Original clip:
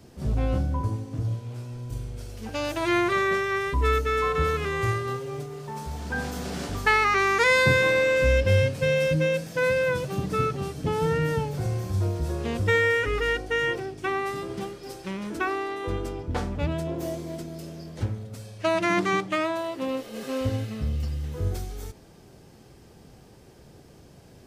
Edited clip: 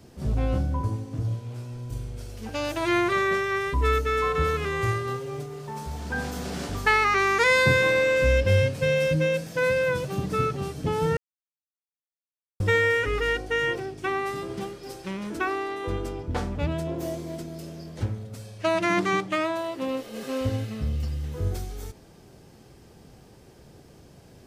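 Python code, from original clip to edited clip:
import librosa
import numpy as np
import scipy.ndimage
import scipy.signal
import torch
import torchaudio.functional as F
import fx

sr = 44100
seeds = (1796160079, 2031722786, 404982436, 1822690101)

y = fx.edit(x, sr, fx.silence(start_s=11.17, length_s=1.43), tone=tone)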